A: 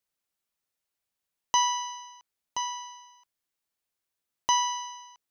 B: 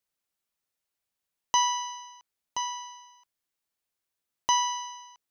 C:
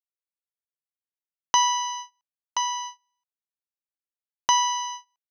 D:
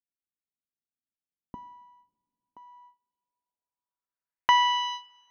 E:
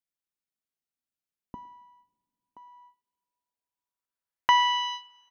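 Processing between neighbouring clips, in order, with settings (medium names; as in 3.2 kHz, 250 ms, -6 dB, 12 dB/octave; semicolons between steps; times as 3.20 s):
no audible change
gate -42 dBFS, range -32 dB; in parallel at +1 dB: compression, threshold -33 dBFS, peak gain reduction 13 dB; on the sum: trim +1.5 dB
low-pass sweep 250 Hz -> 5.2 kHz, 2.60–5.27 s; two-slope reverb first 0.76 s, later 3.3 s, from -19 dB, DRR 17 dB; trim -1 dB
speakerphone echo 110 ms, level -22 dB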